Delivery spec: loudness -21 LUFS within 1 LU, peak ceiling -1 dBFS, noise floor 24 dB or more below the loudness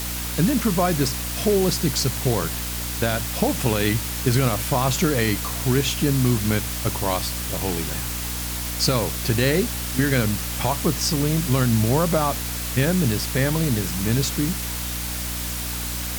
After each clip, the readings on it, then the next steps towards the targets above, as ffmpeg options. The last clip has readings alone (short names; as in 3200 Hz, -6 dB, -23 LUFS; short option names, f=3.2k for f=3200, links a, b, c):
hum 60 Hz; harmonics up to 300 Hz; hum level -29 dBFS; noise floor -28 dBFS; noise floor target -46 dBFS; loudness -22.0 LUFS; peak -7.0 dBFS; loudness target -21.0 LUFS
-> -af "bandreject=f=60:t=h:w=6,bandreject=f=120:t=h:w=6,bandreject=f=180:t=h:w=6,bandreject=f=240:t=h:w=6,bandreject=f=300:t=h:w=6"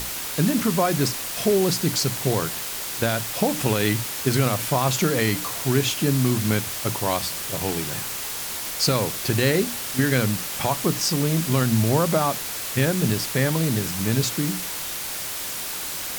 hum none; noise floor -31 dBFS; noise floor target -47 dBFS
-> -af "afftdn=nr=16:nf=-31"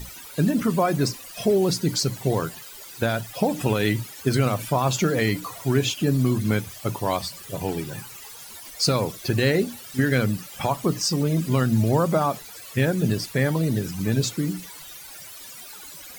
noise floor -42 dBFS; noise floor target -48 dBFS
-> -af "afftdn=nr=6:nf=-42"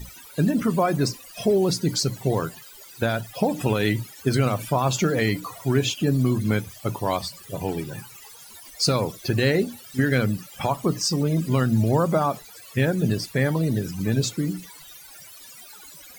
noise floor -45 dBFS; noise floor target -48 dBFS
-> -af "afftdn=nr=6:nf=-45"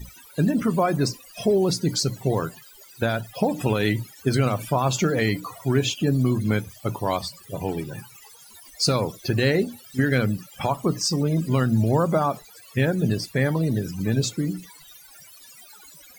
noise floor -49 dBFS; loudness -24.0 LUFS; peak -8.5 dBFS; loudness target -21.0 LUFS
-> -af "volume=3dB"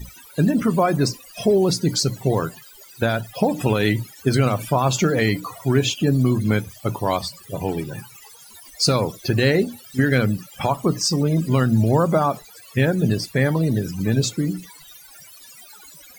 loudness -21.0 LUFS; peak -5.5 dBFS; noise floor -46 dBFS